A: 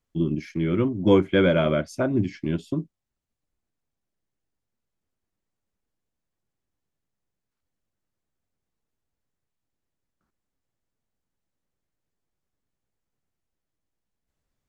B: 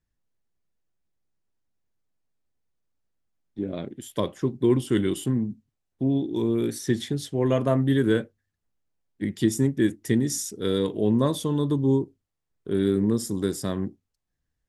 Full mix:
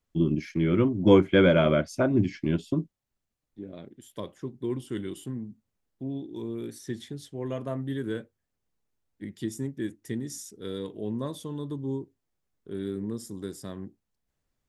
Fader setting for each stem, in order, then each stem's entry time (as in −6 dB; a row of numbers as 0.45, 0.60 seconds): 0.0, −10.5 decibels; 0.00, 0.00 seconds